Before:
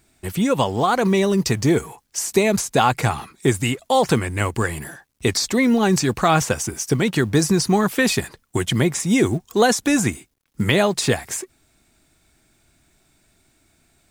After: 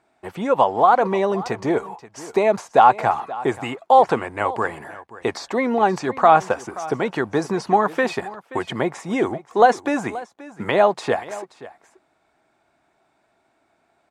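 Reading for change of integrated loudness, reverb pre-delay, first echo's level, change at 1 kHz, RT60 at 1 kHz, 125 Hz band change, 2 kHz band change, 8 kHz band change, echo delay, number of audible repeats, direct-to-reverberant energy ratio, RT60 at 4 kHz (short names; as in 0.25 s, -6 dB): 0.0 dB, none, -17.5 dB, +6.0 dB, none, -11.5 dB, -2.5 dB, -16.5 dB, 0.529 s, 1, none, none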